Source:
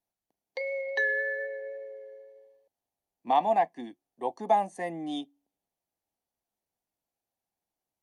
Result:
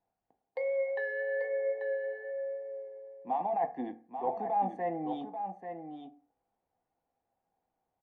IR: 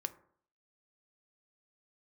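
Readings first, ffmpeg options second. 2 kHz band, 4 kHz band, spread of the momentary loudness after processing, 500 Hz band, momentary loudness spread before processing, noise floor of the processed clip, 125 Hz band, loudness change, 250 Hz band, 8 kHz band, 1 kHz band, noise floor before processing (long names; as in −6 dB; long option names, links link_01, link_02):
−8.5 dB, below −15 dB, 13 LU, 0.0 dB, 18 LU, below −85 dBFS, 0.0 dB, −5.0 dB, −1.5 dB, can't be measured, −4.5 dB, below −85 dBFS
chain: -filter_complex "[0:a]asplit=2[link_01][link_02];[link_02]asoftclip=type=tanh:threshold=-25.5dB,volume=-3.5dB[link_03];[link_01][link_03]amix=inputs=2:normalize=0,alimiter=limit=-19.5dB:level=0:latency=1:release=18,lowpass=1600,areverse,acompressor=threshold=-35dB:ratio=6,areverse,equalizer=frequency=770:width=3.2:gain=6,aecho=1:1:838:0.398[link_04];[1:a]atrim=start_sample=2205,asetrate=61740,aresample=44100[link_05];[link_04][link_05]afir=irnorm=-1:irlink=0,volume=5.5dB"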